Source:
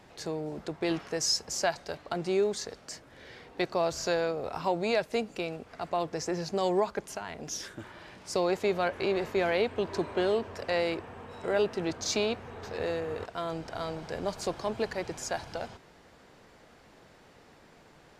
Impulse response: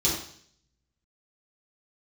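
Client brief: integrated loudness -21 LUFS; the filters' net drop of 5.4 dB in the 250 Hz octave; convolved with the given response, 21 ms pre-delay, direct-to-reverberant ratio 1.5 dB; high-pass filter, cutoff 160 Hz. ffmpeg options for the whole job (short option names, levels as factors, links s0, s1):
-filter_complex "[0:a]highpass=160,equalizer=f=250:t=o:g=-8.5,asplit=2[s0][s1];[1:a]atrim=start_sample=2205,adelay=21[s2];[s1][s2]afir=irnorm=-1:irlink=0,volume=0.237[s3];[s0][s3]amix=inputs=2:normalize=0,volume=2.66"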